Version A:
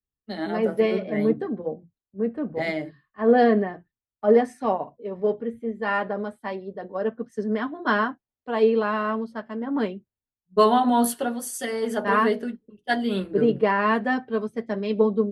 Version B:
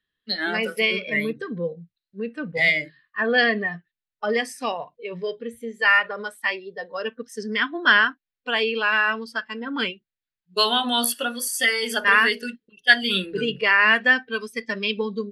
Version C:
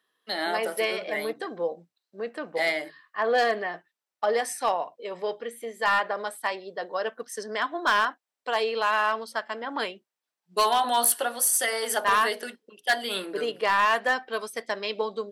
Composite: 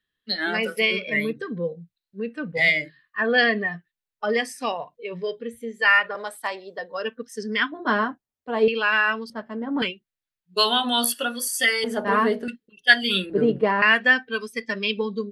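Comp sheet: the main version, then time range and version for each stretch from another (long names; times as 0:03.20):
B
0:06.15–0:06.79: punch in from C
0:07.72–0:08.68: punch in from A
0:09.30–0:09.82: punch in from A
0:11.84–0:12.48: punch in from A
0:13.30–0:13.82: punch in from A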